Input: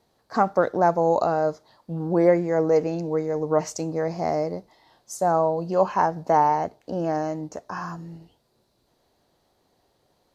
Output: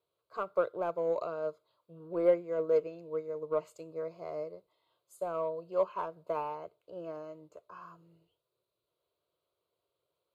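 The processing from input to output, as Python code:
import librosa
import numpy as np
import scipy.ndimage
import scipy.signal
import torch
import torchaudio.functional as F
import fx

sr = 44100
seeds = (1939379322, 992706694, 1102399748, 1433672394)

p1 = scipy.signal.sosfilt(scipy.signal.butter(2, 63.0, 'highpass', fs=sr, output='sos'), x)
p2 = fx.low_shelf(p1, sr, hz=130.0, db=-10.0)
p3 = np.clip(10.0 ** (16.0 / 20.0) * p2, -1.0, 1.0) / 10.0 ** (16.0 / 20.0)
p4 = p2 + (p3 * 10.0 ** (-9.5 / 20.0))
p5 = fx.fixed_phaser(p4, sr, hz=1200.0, stages=8)
p6 = fx.upward_expand(p5, sr, threshold_db=-31.0, expansion=1.5)
y = p6 * 10.0 ** (-7.0 / 20.0)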